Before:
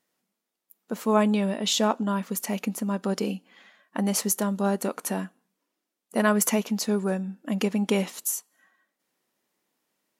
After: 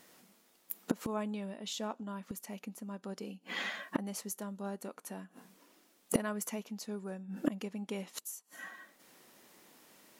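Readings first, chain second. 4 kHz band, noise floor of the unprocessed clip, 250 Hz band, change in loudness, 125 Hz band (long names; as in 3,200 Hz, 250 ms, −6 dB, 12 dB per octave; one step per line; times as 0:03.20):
−13.0 dB, −84 dBFS, −13.0 dB, −13.5 dB, can't be measured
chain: gate with flip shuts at −27 dBFS, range −32 dB
soft clipping −33 dBFS, distortion −14 dB
level +16.5 dB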